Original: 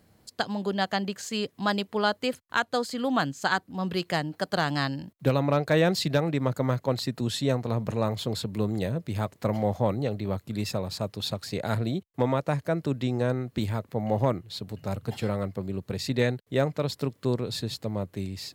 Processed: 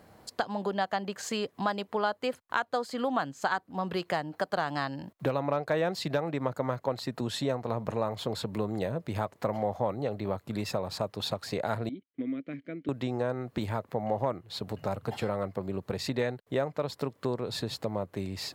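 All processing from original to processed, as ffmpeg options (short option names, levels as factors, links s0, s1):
-filter_complex "[0:a]asettb=1/sr,asplit=3[s0][s1][s2];[s0]atrim=end=11.894[s3];[s1]atrim=start=11.89:end=12.89,asetpts=PTS-STARTPTS,afade=t=in:d=0.004:c=qsin,afade=t=out:st=0.996:d=0.004:c=qsin,asplit=3[s4][s5][s6];[s4]bandpass=f=270:t=q:w=8,volume=1[s7];[s5]bandpass=f=2290:t=q:w=8,volume=0.501[s8];[s6]bandpass=f=3010:t=q:w=8,volume=0.355[s9];[s7][s8][s9]amix=inputs=3:normalize=0,highshelf=f=5100:g=-10[s10];[s2]atrim=start=12.886[s11];[s3][s10]acrossfade=d=0.004:c1=hsin:c2=qsin[s12];[s12][s11]acrossfade=d=0.004:c1=qsin:c2=hsin,equalizer=f=860:t=o:w=2.5:g=10.5,acompressor=threshold=0.0224:ratio=2.5,volume=1.12"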